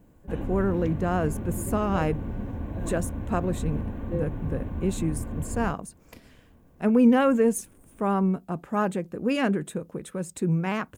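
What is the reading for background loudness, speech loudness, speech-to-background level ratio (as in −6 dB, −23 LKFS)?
−34.0 LKFS, −27.0 LKFS, 7.0 dB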